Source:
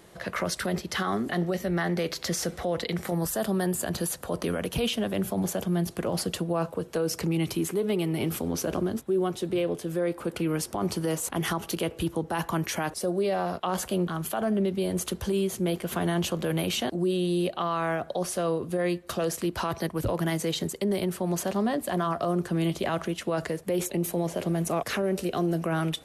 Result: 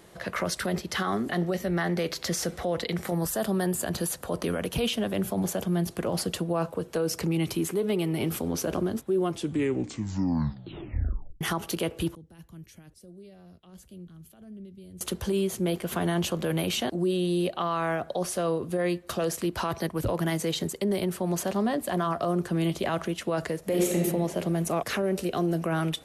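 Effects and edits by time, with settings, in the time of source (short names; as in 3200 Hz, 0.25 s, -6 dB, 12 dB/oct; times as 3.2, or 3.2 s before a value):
9.2 tape stop 2.21 s
12.15–15.01 passive tone stack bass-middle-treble 10-0-1
23.59–24.02 reverb throw, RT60 1.3 s, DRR -1.5 dB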